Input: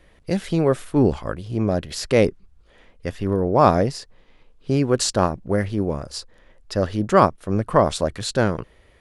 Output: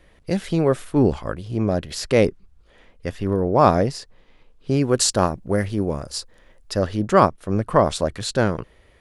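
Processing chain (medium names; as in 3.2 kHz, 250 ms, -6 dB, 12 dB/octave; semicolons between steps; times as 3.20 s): 4.81–6.79 s: treble shelf 7.3 kHz +8.5 dB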